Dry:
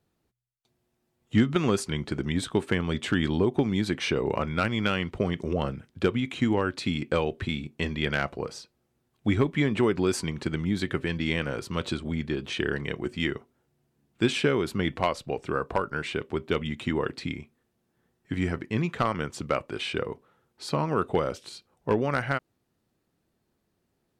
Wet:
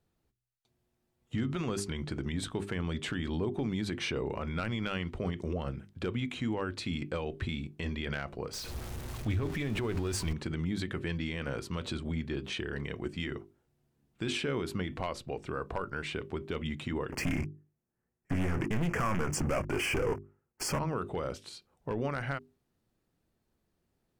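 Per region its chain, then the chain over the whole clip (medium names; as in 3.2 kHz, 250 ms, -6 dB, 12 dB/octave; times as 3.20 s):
8.53–10.33 s: jump at every zero crossing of -34 dBFS + resonant low shelf 120 Hz +6.5 dB, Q 1.5 + loudspeaker Doppler distortion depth 0.13 ms
17.12–20.79 s: waveshaping leveller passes 5 + Butterworth band-stop 3.8 kHz, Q 1.5 + loudspeaker Doppler distortion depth 0.21 ms
whole clip: bass shelf 70 Hz +11 dB; hum notches 50/100/150/200/250/300/350/400 Hz; peak limiter -20 dBFS; trim -4 dB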